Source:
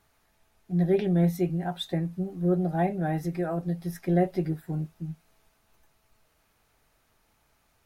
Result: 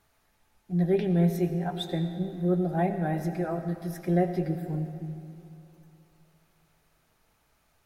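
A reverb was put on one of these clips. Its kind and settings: digital reverb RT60 2.8 s, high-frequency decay 0.7×, pre-delay 50 ms, DRR 8.5 dB; gain -1 dB

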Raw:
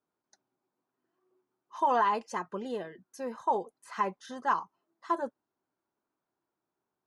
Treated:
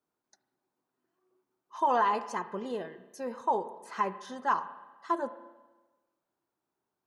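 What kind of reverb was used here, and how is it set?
spring tank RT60 1.2 s, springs 32/47 ms, chirp 45 ms, DRR 12 dB

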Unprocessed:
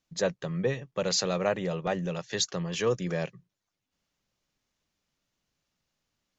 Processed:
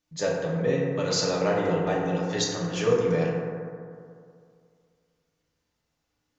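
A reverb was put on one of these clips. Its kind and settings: FDN reverb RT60 2.3 s, low-frequency decay 1×, high-frequency decay 0.3×, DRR -5 dB; gain -2.5 dB

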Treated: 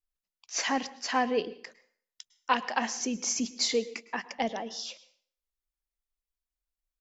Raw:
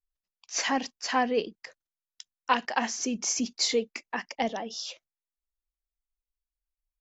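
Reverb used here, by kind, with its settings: plate-style reverb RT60 0.53 s, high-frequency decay 0.9×, pre-delay 95 ms, DRR 17 dB; gain -1.5 dB

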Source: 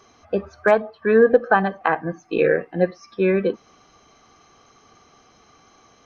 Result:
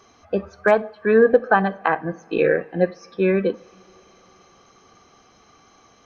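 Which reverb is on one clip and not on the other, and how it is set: two-slope reverb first 0.43 s, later 4.7 s, from -18 dB, DRR 19.5 dB

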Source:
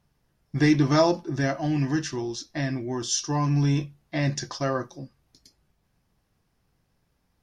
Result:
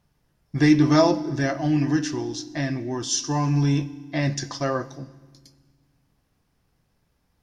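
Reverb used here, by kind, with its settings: FDN reverb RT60 1.4 s, low-frequency decay 1.6×, high-frequency decay 1×, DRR 15 dB; gain +1.5 dB

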